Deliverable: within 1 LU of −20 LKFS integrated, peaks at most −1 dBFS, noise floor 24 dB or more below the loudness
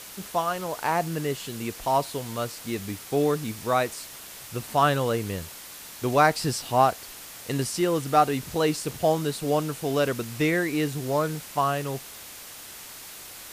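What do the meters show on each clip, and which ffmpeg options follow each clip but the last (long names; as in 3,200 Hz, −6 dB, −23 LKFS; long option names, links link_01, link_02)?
background noise floor −43 dBFS; target noise floor −50 dBFS; integrated loudness −26.0 LKFS; sample peak −6.0 dBFS; target loudness −20.0 LKFS
→ -af "afftdn=noise_reduction=7:noise_floor=-43"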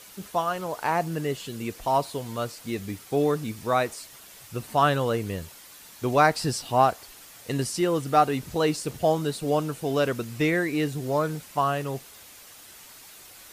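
background noise floor −48 dBFS; target noise floor −50 dBFS
→ -af "afftdn=noise_reduction=6:noise_floor=-48"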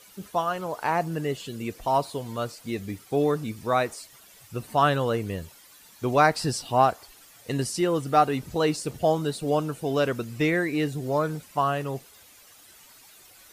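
background noise floor −53 dBFS; integrated loudness −26.0 LKFS; sample peak −6.0 dBFS; target loudness −20.0 LKFS
→ -af "volume=6dB,alimiter=limit=-1dB:level=0:latency=1"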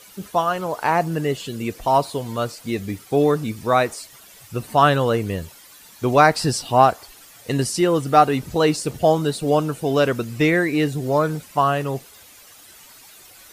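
integrated loudness −20.5 LKFS; sample peak −1.0 dBFS; background noise floor −47 dBFS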